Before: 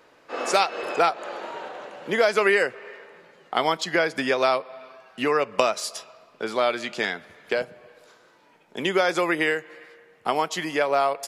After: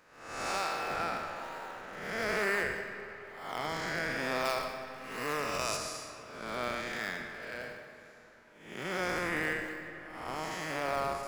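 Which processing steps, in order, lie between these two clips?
time blur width 0.281 s; EQ curve 160 Hz 0 dB, 400 Hz -7 dB, 1800 Hz +4 dB, 3200 Hz -3 dB, 5900 Hz +4 dB; in parallel at -10 dB: decimation with a swept rate 28×, swing 100% 1.1 Hz; 4.45–5.77 on the sum: high shelf 3400 Hz +8.5 dB; digital reverb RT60 4.1 s, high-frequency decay 0.6×, pre-delay 65 ms, DRR 9.5 dB; gain -6 dB

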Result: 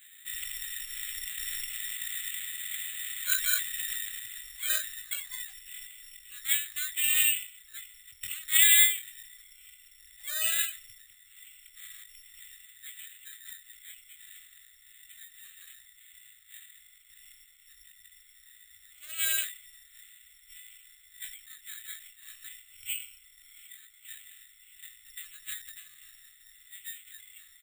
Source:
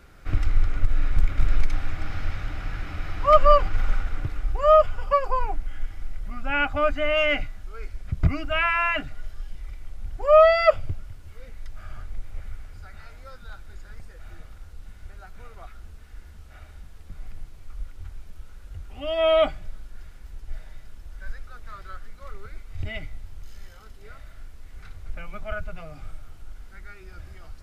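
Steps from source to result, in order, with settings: elliptic high-pass 1500 Hz, stop band 40 dB; high shelf 3200 Hz +11 dB; formant shift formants +4 st; air absorption 280 m; doubler 19 ms -8.5 dB; careless resampling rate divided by 8×, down filtered, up zero stuff; ending taper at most 130 dB/s; gain +1 dB

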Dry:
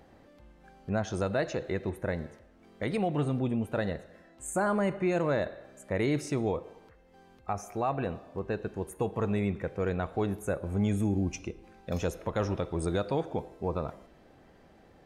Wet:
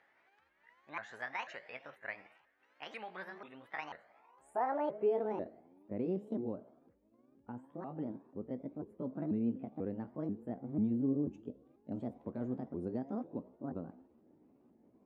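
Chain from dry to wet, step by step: repeated pitch sweeps +8 st, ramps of 0.49 s; band-pass sweep 1800 Hz -> 260 Hz, 3.72–5.64

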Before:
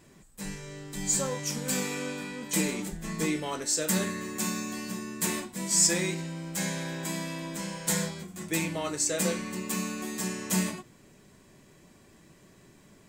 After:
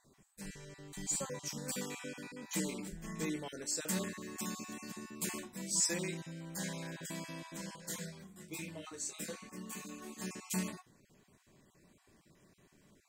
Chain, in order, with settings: random spectral dropouts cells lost 23%; 7.76–10.22 detuned doubles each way 16 cents; gain -8.5 dB

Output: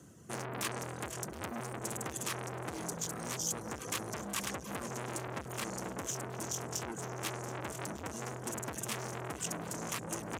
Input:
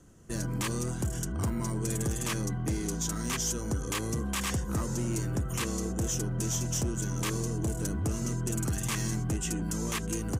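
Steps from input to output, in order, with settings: in parallel at +2 dB: vocal rider 2 s; on the sum: HPF 90 Hz 24 dB/oct; high shelf 11000 Hz +4 dB; multi-head echo 0.241 s, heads all three, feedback 64%, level -17.5 dB; reverb removal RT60 0.57 s; core saturation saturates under 3000 Hz; gain -7.5 dB

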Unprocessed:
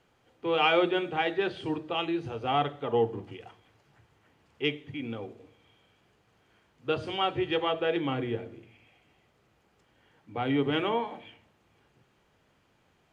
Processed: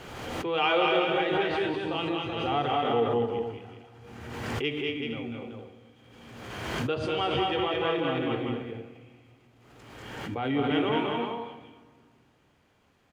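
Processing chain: tapped delay 0.193/0.218/0.252/0.379/0.46 s -4.5/-3.5/-12/-6/-12 dB; on a send at -11.5 dB: reverb RT60 1.8 s, pre-delay 6 ms; on the sum: backwards sustainer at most 34 dB/s; gain -2.5 dB

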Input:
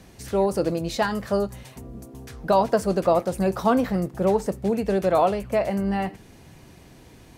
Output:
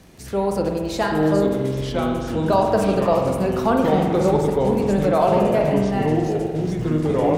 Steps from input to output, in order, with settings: echoes that change speed 0.697 s, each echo -4 st, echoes 3; spring tank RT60 1.6 s, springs 45 ms, chirp 40 ms, DRR 2 dB; crackle 26/s -36 dBFS

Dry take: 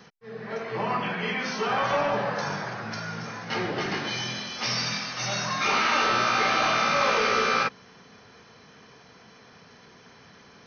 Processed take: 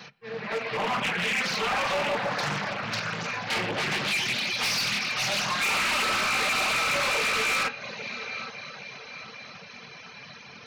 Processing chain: low shelf 70 Hz -11.5 dB; notch 420 Hz, Q 12; in parallel at -2 dB: compressor 4:1, threshold -35 dBFS, peak gain reduction 13 dB; on the sum: thirty-one-band EQ 315 Hz -10 dB, 2500 Hz +10 dB, 4000 Hz +7 dB; multi-head echo 0.27 s, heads first and third, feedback 60%, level -18 dB; on a send at -6 dB: reverb RT60 2.2 s, pre-delay 7 ms; on the sum: reverb removal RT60 0.87 s; overloaded stage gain 23.5 dB; Doppler distortion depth 0.48 ms

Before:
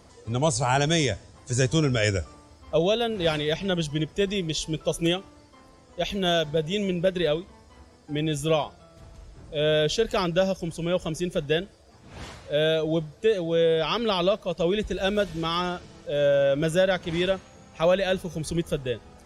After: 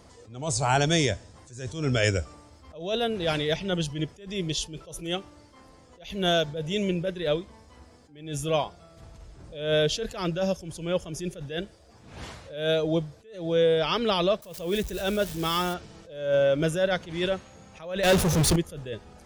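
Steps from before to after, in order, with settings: 14.42–15.74 switching spikes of -29 dBFS; 18.03–18.56 power-law curve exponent 0.35; attack slew limiter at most 100 dB/s

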